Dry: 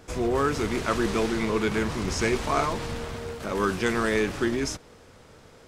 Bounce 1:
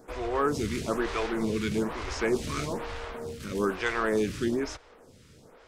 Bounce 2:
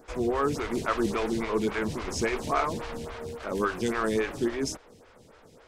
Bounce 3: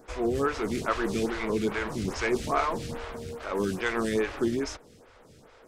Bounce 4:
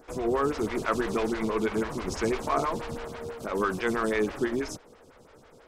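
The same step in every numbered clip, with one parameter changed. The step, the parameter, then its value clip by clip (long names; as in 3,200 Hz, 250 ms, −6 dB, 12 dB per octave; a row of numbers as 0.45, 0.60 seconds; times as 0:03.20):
phaser with staggered stages, speed: 1.1, 3.6, 2.4, 6.1 Hertz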